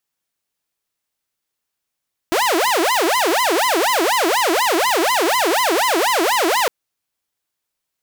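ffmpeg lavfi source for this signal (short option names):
-f lavfi -i "aevalsrc='0.251*(2*mod((675.5*t-354.5/(2*PI*4.1)*sin(2*PI*4.1*t)),1)-1)':d=4.36:s=44100"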